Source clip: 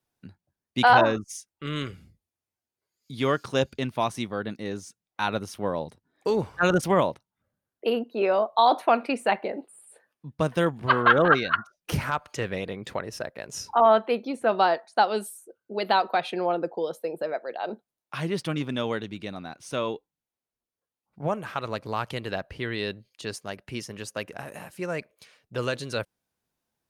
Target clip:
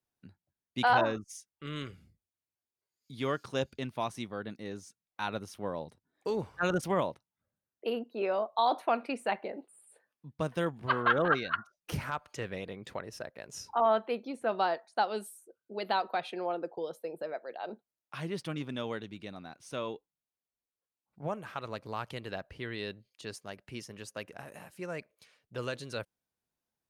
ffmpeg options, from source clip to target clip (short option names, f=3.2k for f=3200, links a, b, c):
-filter_complex "[0:a]asettb=1/sr,asplit=3[a][b][c];[a]atrim=end=16.234[d];[b]atrim=start=16.23:end=16.78,asetpts=PTS-STARTPTS,afade=t=in:d=0.004:c=qsin,afade=t=out:st=0.546:d=0.004:c=qsin,highpass=200[e];[c]atrim=start=16.776[f];[d][e]acrossfade=d=0.004:c1=hsin:c2=qsin[g];[g][f]acrossfade=d=0.004:c1=qsin:c2=hsin,volume=-8dB"